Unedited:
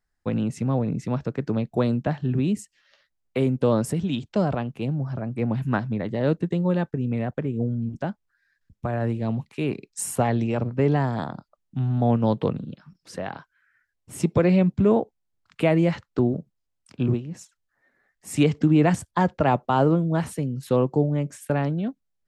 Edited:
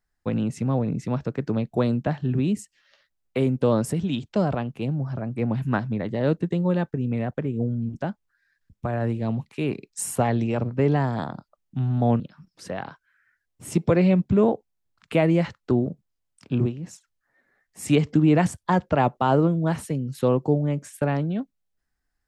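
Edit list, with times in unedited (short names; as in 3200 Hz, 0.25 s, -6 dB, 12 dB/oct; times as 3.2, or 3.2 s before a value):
12.2–12.68 cut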